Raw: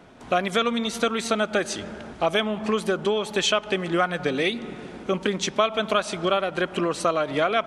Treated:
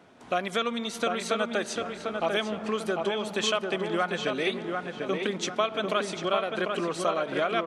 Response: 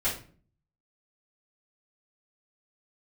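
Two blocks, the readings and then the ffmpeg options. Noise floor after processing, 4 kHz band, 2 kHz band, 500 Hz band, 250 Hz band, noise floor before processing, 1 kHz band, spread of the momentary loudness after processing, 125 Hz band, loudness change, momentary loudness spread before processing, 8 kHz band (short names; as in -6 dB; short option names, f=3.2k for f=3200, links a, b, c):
-42 dBFS, -4.5 dB, -4.0 dB, -4.0 dB, -5.0 dB, -42 dBFS, -4.0 dB, 4 LU, -6.0 dB, -4.5 dB, 5 LU, -5.0 dB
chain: -filter_complex "[0:a]highpass=f=160:p=1,asplit=2[a][b];[b]adelay=746,lowpass=f=2.5k:p=1,volume=-4dB,asplit=2[c][d];[d]adelay=746,lowpass=f=2.5k:p=1,volume=0.41,asplit=2[e][f];[f]adelay=746,lowpass=f=2.5k:p=1,volume=0.41,asplit=2[g][h];[h]adelay=746,lowpass=f=2.5k:p=1,volume=0.41,asplit=2[i][j];[j]adelay=746,lowpass=f=2.5k:p=1,volume=0.41[k];[c][e][g][i][k]amix=inputs=5:normalize=0[l];[a][l]amix=inputs=2:normalize=0,volume=-5dB"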